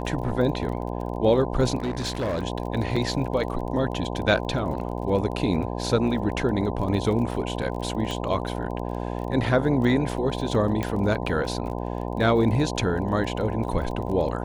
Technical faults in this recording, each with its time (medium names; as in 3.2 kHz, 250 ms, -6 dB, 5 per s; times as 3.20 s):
buzz 60 Hz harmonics 17 -30 dBFS
crackle 26 per s -33 dBFS
1.78–2.43 s: clipped -23 dBFS
2.96 s: dropout 4.7 ms
8.11 s: pop -16 dBFS
10.83 s: pop -14 dBFS